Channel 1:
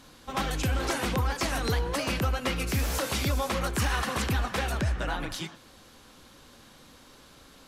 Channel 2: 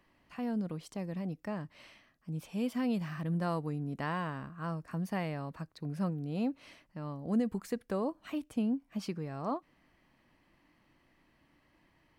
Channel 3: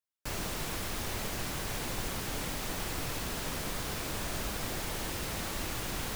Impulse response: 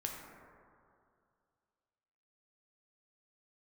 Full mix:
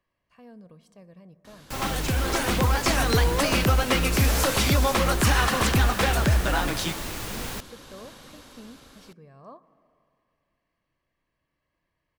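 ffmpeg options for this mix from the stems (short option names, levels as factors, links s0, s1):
-filter_complex "[0:a]dynaudnorm=f=290:g=7:m=2,adelay=1450,volume=1.06[s0];[1:a]aecho=1:1:1.8:0.47,volume=0.224,asplit=2[s1][s2];[s2]volume=0.299[s3];[2:a]adelay=1450,volume=1.33[s4];[3:a]atrim=start_sample=2205[s5];[s3][s5]afir=irnorm=-1:irlink=0[s6];[s0][s1][s4][s6]amix=inputs=4:normalize=0"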